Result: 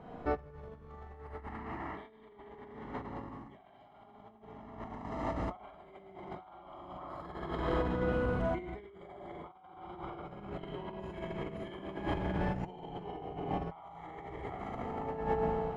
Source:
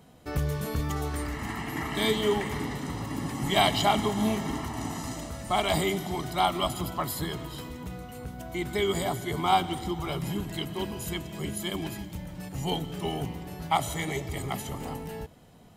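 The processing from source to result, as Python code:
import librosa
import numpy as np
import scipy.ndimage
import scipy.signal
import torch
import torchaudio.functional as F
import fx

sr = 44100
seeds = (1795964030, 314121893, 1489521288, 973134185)

y = fx.rev_schroeder(x, sr, rt60_s=2.0, comb_ms=32, drr_db=-5.5)
y = fx.over_compress(y, sr, threshold_db=-33.0, ratio=-0.5)
y = scipy.signal.sosfilt(scipy.signal.butter(2, 1200.0, 'lowpass', fs=sr, output='sos'), y)
y = fx.peak_eq(y, sr, hz=140.0, db=-9.5, octaves=2.8)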